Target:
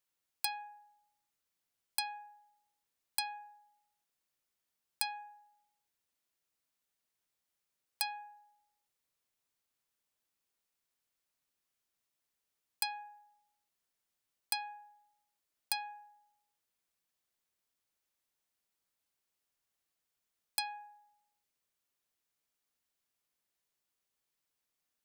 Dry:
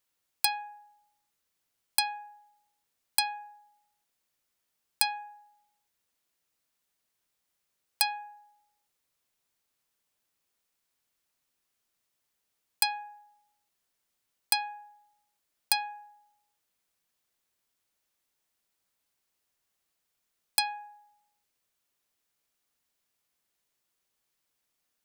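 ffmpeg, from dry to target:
-af "alimiter=limit=-10dB:level=0:latency=1:release=176,volume=-6dB"

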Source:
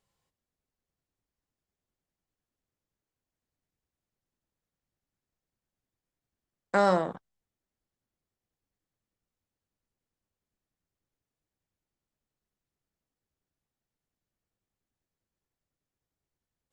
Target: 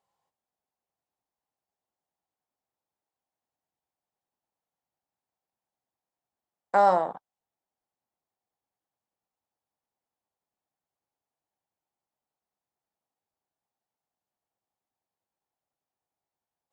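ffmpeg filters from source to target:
-af "highpass=f=170:p=1,equalizer=f=810:t=o:w=1:g=14.5,volume=-6dB"

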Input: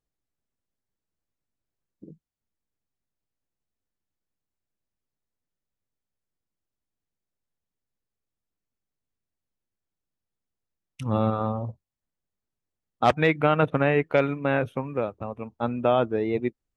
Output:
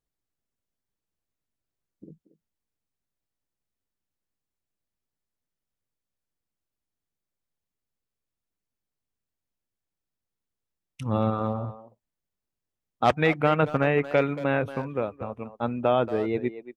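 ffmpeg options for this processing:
-filter_complex "[0:a]asplit=2[a][b];[b]adelay=230,highpass=300,lowpass=3.4k,asoftclip=type=hard:threshold=-16dB,volume=-12dB[c];[a][c]amix=inputs=2:normalize=0,volume=-1dB"

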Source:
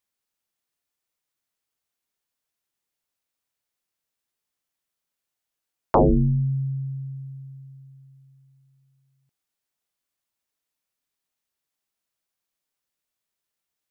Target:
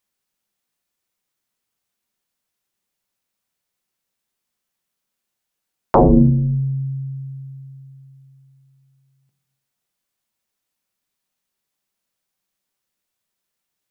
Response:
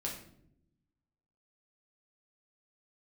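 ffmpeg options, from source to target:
-filter_complex "[0:a]asplit=2[a][b];[b]equalizer=f=180:t=o:w=0.77:g=7.5[c];[1:a]atrim=start_sample=2205,asetrate=70560,aresample=44100[d];[c][d]afir=irnorm=-1:irlink=0,volume=-3dB[e];[a][e]amix=inputs=2:normalize=0,volume=2dB"

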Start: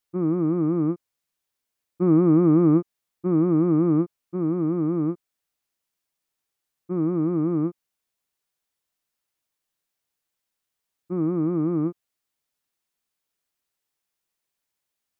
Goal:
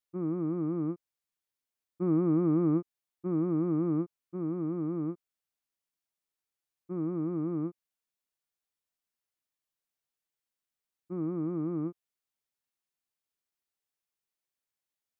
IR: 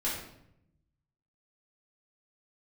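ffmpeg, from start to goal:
-af "volume=-9dB"

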